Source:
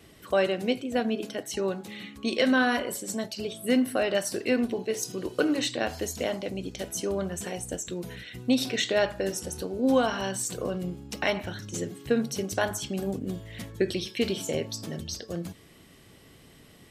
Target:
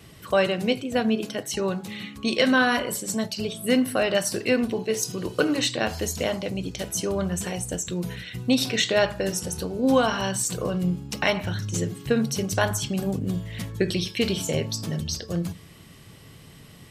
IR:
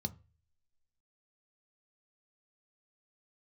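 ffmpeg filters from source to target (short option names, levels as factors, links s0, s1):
-filter_complex "[0:a]asplit=2[s0][s1];[1:a]atrim=start_sample=2205,lowpass=2500[s2];[s1][s2]afir=irnorm=-1:irlink=0,volume=0.224[s3];[s0][s3]amix=inputs=2:normalize=0,volume=1.78"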